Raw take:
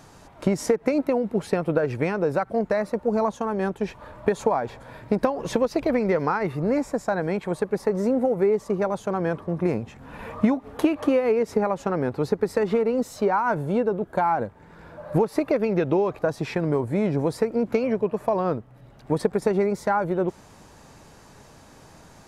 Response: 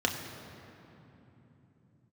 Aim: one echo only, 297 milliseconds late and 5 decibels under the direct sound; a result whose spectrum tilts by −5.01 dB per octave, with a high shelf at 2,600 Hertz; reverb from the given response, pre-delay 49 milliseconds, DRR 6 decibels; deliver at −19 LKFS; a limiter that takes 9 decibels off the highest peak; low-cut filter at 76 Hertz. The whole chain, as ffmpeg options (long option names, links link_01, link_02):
-filter_complex "[0:a]highpass=76,highshelf=frequency=2600:gain=-3,alimiter=limit=-15.5dB:level=0:latency=1,aecho=1:1:297:0.562,asplit=2[link_01][link_02];[1:a]atrim=start_sample=2205,adelay=49[link_03];[link_02][link_03]afir=irnorm=-1:irlink=0,volume=-15.5dB[link_04];[link_01][link_04]amix=inputs=2:normalize=0,volume=5dB"